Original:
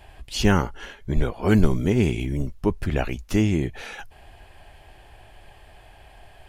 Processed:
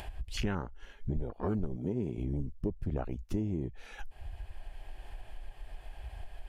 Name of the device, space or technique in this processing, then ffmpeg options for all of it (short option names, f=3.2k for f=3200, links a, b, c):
upward and downward compression: -filter_complex "[0:a]asettb=1/sr,asplit=3[a][b][c];[a]atrim=end=1.764[d];[b]atrim=start=1.76:end=2.18,asetpts=PTS-STARTPTS,afade=t=in:d=0.004:c=qsin,afade=t=out:st=0.416:d=0.004:c=qsin,highpass=110[e];[c]atrim=start=2.176[f];[d][e]acrossfade=d=0.004:c1=hsin:c2=qsin[g];[g][f]acrossfade=d=0.004:c1=qsin:c2=hsin,afwtdn=0.0447,acompressor=mode=upward:threshold=-30dB:ratio=2.5,acompressor=threshold=-31dB:ratio=5"